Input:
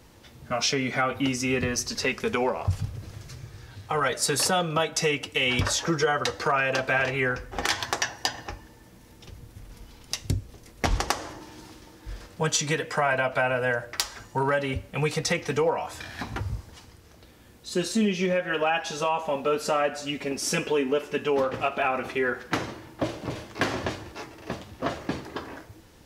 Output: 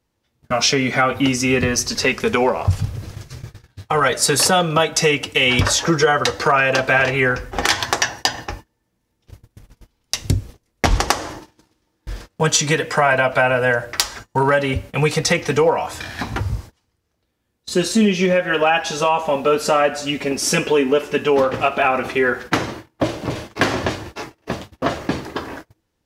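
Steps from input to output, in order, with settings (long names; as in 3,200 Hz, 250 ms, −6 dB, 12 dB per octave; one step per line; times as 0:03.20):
noise gate −41 dBFS, range −28 dB
level +8.5 dB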